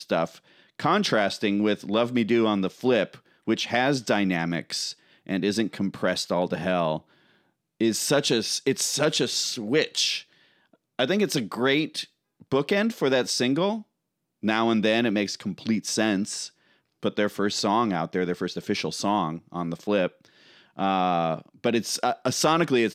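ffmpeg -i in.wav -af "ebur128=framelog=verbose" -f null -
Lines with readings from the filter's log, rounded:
Integrated loudness:
  I:         -25.2 LUFS
  Threshold: -35.6 LUFS
Loudness range:
  LRA:         2.8 LU
  Threshold: -45.8 LUFS
  LRA low:   -27.3 LUFS
  LRA high:  -24.5 LUFS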